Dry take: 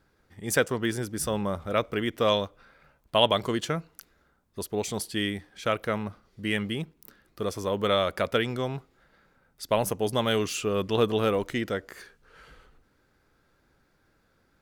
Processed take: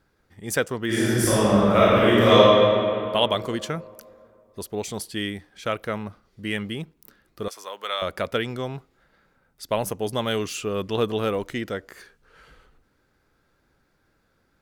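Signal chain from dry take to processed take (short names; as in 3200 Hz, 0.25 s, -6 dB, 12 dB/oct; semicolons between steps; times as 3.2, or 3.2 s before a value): 0.86–2.37 reverb throw, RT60 2.7 s, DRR -11 dB; 7.48–8.02 HPF 910 Hz 12 dB/oct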